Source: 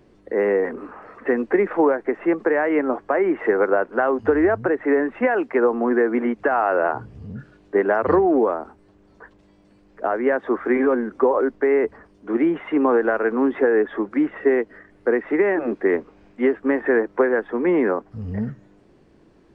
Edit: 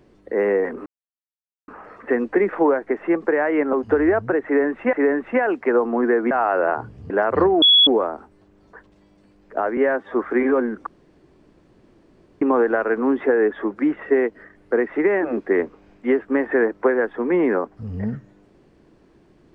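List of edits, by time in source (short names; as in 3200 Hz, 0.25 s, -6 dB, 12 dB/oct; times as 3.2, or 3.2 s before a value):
0.86 insert silence 0.82 s
2.91–4.09 cut
4.81–5.29 loop, 2 plays
6.19–6.48 cut
7.27–7.82 cut
8.34 add tone 3370 Hz -9.5 dBFS 0.25 s
10.24–10.49 stretch 1.5×
11.21–12.76 room tone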